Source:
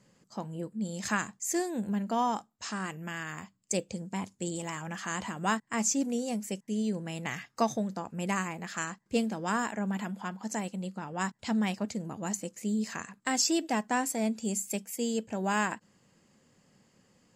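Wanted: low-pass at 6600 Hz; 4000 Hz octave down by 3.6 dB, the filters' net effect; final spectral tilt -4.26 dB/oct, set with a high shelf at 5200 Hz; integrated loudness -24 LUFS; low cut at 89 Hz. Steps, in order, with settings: HPF 89 Hz; LPF 6600 Hz; bell 4000 Hz -7.5 dB; high shelf 5200 Hz +5.5 dB; gain +9 dB

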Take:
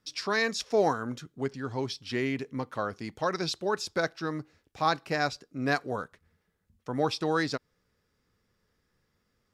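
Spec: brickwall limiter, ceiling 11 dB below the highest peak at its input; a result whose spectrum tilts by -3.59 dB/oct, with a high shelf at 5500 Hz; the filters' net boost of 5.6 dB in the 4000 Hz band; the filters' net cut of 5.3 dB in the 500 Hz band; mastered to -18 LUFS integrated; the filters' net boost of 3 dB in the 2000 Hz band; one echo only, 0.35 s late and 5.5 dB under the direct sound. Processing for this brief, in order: bell 500 Hz -7 dB; bell 2000 Hz +3 dB; bell 4000 Hz +4 dB; high shelf 5500 Hz +5 dB; limiter -20.5 dBFS; echo 0.35 s -5.5 dB; gain +14.5 dB

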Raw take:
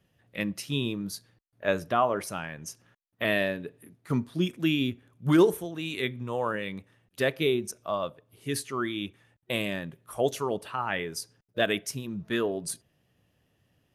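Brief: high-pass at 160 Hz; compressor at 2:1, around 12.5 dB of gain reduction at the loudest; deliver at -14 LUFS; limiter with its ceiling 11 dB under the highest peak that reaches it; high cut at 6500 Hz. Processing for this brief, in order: HPF 160 Hz; LPF 6500 Hz; compressor 2:1, threshold -39 dBFS; gain +28.5 dB; limiter -1.5 dBFS

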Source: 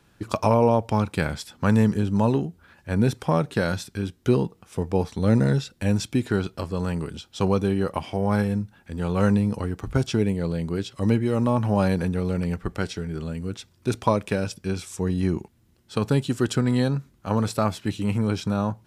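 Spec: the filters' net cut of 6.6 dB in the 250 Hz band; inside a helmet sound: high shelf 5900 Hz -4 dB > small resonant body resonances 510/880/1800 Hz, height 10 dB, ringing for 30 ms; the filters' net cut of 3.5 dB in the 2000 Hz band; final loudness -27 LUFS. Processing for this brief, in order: bell 250 Hz -9 dB; bell 2000 Hz -4.5 dB; high shelf 5900 Hz -4 dB; small resonant body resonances 510/880/1800 Hz, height 10 dB, ringing for 30 ms; gain -2 dB

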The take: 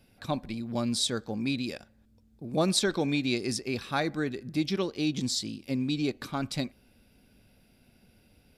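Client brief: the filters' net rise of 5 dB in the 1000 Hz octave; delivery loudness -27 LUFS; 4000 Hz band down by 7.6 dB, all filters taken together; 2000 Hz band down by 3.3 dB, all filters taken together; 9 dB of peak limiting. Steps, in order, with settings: bell 1000 Hz +8.5 dB; bell 2000 Hz -5.5 dB; bell 4000 Hz -8 dB; gain +6 dB; limiter -16.5 dBFS

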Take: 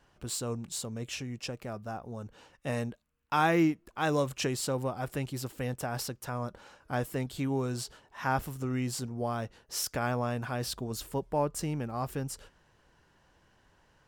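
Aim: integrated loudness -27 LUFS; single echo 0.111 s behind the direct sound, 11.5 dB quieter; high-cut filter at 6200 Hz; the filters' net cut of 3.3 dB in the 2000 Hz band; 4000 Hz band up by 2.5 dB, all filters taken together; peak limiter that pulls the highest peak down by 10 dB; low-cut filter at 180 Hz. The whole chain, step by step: HPF 180 Hz; LPF 6200 Hz; bell 2000 Hz -6 dB; bell 4000 Hz +6 dB; limiter -23.5 dBFS; echo 0.111 s -11.5 dB; gain +9.5 dB

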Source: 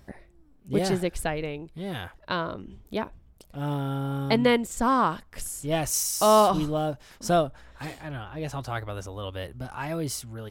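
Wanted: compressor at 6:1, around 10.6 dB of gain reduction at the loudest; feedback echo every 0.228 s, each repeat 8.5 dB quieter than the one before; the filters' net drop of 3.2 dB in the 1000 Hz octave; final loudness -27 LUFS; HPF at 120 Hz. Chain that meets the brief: HPF 120 Hz; bell 1000 Hz -4 dB; compressor 6:1, threshold -27 dBFS; feedback echo 0.228 s, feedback 38%, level -8.5 dB; gain +6 dB

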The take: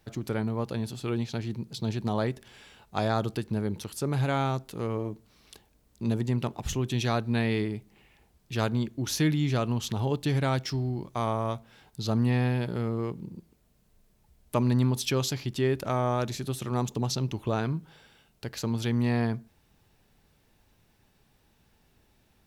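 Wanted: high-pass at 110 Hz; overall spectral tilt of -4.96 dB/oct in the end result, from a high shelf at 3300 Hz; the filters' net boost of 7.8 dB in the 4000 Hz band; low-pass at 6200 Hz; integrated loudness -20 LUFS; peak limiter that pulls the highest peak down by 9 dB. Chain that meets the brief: HPF 110 Hz; LPF 6200 Hz; high shelf 3300 Hz +6 dB; bell 4000 Hz +6 dB; gain +11.5 dB; limiter -7 dBFS

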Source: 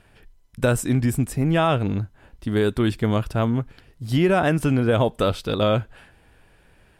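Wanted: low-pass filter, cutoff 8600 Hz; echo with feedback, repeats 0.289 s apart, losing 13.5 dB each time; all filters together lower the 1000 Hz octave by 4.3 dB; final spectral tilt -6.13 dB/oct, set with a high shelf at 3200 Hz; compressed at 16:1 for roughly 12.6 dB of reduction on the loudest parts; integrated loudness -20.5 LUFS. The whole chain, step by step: LPF 8600 Hz; bell 1000 Hz -7 dB; high shelf 3200 Hz +4 dB; compressor 16:1, threshold -28 dBFS; feedback echo 0.289 s, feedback 21%, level -13.5 dB; gain +13.5 dB

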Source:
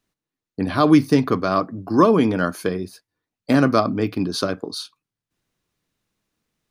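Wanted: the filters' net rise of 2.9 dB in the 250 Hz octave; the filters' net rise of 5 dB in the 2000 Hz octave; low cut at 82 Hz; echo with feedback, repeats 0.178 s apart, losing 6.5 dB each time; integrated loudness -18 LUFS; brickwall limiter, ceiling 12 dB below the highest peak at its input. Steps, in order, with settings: HPF 82 Hz; bell 250 Hz +3.5 dB; bell 2000 Hz +7 dB; limiter -12 dBFS; feedback echo 0.178 s, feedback 47%, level -6.5 dB; gain +4 dB

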